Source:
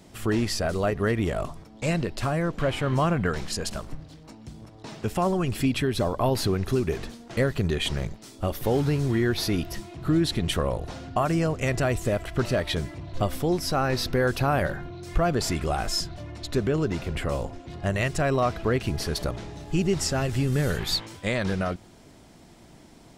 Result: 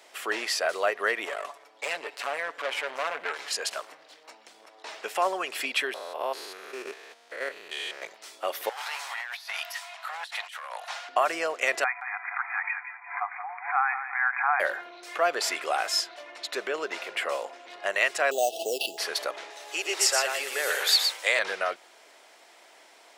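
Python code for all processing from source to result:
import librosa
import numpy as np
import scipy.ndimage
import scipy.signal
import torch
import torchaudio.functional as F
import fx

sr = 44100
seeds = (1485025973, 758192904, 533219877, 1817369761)

y = fx.chain(x, sr, fx.comb(ms=7.0, depth=0.53),
    fx.tube_stage(drive_db=26.0, bias=0.7),
    fx.echo_feedback(ms=100, feedback_pct=56, wet_db=-22), at=(1.25, 3.51))
y = fx.chain(y, sr, fx.spec_steps(hold_ms=200),
    fx.low_shelf(hz=66.0, db=-11.0),
    fx.level_steps(step_db=9), at=(5.94, 8.02))
y = fx.chain(y, sr, fx.clip_hard(threshold_db=-20.0),
    fx.steep_highpass(hz=720.0, slope=36),
    fx.over_compress(threshold_db=-41.0, ratio=-1.0), at=(8.69, 11.09))
y = fx.chain(y, sr, fx.brickwall_bandpass(low_hz=710.0, high_hz=2500.0),
    fx.echo_feedback(ms=173, feedback_pct=29, wet_db=-10.5),
    fx.pre_swell(db_per_s=120.0), at=(11.84, 14.6))
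y = fx.chain(y, sr, fx.sample_hold(seeds[0], rate_hz=7300.0, jitter_pct=0),
    fx.brickwall_bandstop(low_hz=850.0, high_hz=2600.0),
    fx.pre_swell(db_per_s=80.0), at=(18.31, 18.98))
y = fx.chain(y, sr, fx.highpass(hz=360.0, slope=24),
    fx.high_shelf(hz=5800.0, db=8.5),
    fx.echo_single(ms=119, db=-5.0), at=(19.5, 21.39))
y = scipy.signal.sosfilt(scipy.signal.butter(4, 490.0, 'highpass', fs=sr, output='sos'), y)
y = fx.peak_eq(y, sr, hz=2100.0, db=6.5, octaves=1.6)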